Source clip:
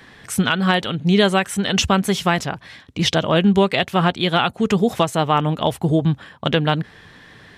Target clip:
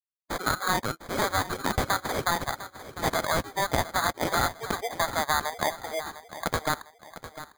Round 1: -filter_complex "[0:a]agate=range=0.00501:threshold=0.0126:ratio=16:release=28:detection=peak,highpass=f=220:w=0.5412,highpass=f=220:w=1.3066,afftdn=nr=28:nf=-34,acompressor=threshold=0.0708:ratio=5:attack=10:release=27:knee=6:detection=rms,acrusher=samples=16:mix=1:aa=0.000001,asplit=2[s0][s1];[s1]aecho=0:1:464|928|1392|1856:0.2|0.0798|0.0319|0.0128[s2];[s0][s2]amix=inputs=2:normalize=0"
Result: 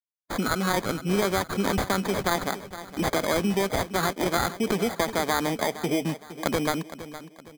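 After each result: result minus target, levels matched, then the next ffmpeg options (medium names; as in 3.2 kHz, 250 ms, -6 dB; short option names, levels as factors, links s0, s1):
250 Hz band +7.0 dB; echo 238 ms early
-filter_complex "[0:a]agate=range=0.00501:threshold=0.0126:ratio=16:release=28:detection=peak,highpass=f=710:w=0.5412,highpass=f=710:w=1.3066,afftdn=nr=28:nf=-34,acompressor=threshold=0.0708:ratio=5:attack=10:release=27:knee=6:detection=rms,acrusher=samples=16:mix=1:aa=0.000001,asplit=2[s0][s1];[s1]aecho=0:1:464|928|1392|1856:0.2|0.0798|0.0319|0.0128[s2];[s0][s2]amix=inputs=2:normalize=0"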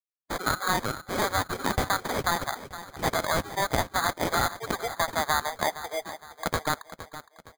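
echo 238 ms early
-filter_complex "[0:a]agate=range=0.00501:threshold=0.0126:ratio=16:release=28:detection=peak,highpass=f=710:w=0.5412,highpass=f=710:w=1.3066,afftdn=nr=28:nf=-34,acompressor=threshold=0.0708:ratio=5:attack=10:release=27:knee=6:detection=rms,acrusher=samples=16:mix=1:aa=0.000001,asplit=2[s0][s1];[s1]aecho=0:1:702|1404|2106|2808:0.2|0.0798|0.0319|0.0128[s2];[s0][s2]amix=inputs=2:normalize=0"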